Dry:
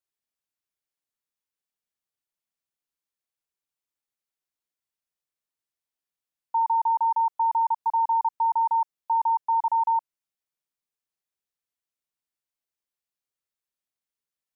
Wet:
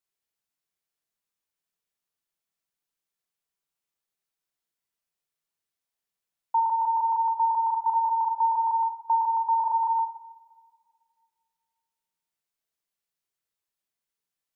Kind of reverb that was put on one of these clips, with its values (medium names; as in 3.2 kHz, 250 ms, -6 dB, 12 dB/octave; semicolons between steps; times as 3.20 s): two-slope reverb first 0.62 s, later 2.1 s, from -18 dB, DRR 4 dB; trim +1 dB